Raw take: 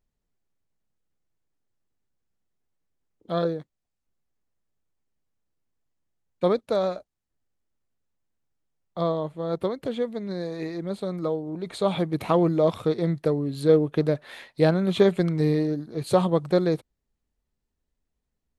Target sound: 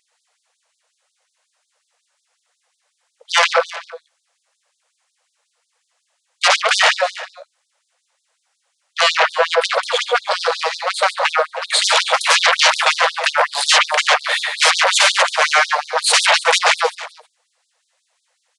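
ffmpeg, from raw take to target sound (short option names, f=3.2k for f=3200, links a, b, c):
-filter_complex "[0:a]asplit=2[a][b];[b]aecho=0:1:55|127|141:0.224|0.224|0.355[c];[a][c]amix=inputs=2:normalize=0,acontrast=52,aeval=exprs='0.75*sin(PI/2*10*val(0)/0.75)':c=same,asplit=2[d][e];[e]aecho=0:1:316:0.15[f];[d][f]amix=inputs=2:normalize=0,aresample=22050,aresample=44100,afftfilt=real='re*gte(b*sr/1024,440*pow(3600/440,0.5+0.5*sin(2*PI*5.5*pts/sr)))':imag='im*gte(b*sr/1024,440*pow(3600/440,0.5+0.5*sin(2*PI*5.5*pts/sr)))':win_size=1024:overlap=0.75,volume=-4.5dB"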